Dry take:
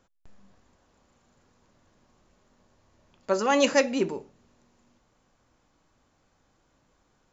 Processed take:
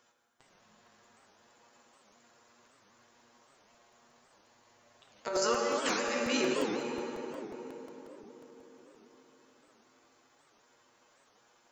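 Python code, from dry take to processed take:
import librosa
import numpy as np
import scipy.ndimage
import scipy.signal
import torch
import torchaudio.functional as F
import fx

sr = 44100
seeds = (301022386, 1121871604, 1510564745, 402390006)

y = fx.highpass(x, sr, hz=990.0, slope=6)
y = fx.over_compress(y, sr, threshold_db=-32.0, ratio=-0.5)
y = fx.stretch_grains(y, sr, factor=1.6, grain_ms=45.0)
y = fx.echo_filtered(y, sr, ms=152, feedback_pct=83, hz=2100.0, wet_db=-9.0)
y = fx.rev_plate(y, sr, seeds[0], rt60_s=4.0, hf_ratio=0.65, predelay_ms=0, drr_db=0.0)
y = fx.buffer_crackle(y, sr, first_s=0.32, period_s=0.18, block=128, kind='repeat')
y = fx.record_warp(y, sr, rpm=78.0, depth_cents=250.0)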